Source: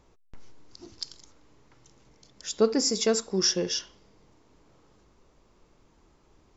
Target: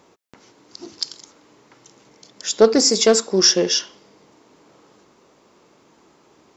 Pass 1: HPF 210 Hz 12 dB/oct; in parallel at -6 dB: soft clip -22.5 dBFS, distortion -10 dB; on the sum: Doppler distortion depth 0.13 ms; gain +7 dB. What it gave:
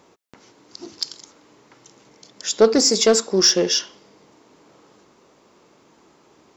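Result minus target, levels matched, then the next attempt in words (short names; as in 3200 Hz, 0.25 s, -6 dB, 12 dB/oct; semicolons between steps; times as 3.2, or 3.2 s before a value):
soft clip: distortion +12 dB
HPF 210 Hz 12 dB/oct; in parallel at -6 dB: soft clip -12.5 dBFS, distortion -22 dB; on the sum: Doppler distortion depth 0.13 ms; gain +7 dB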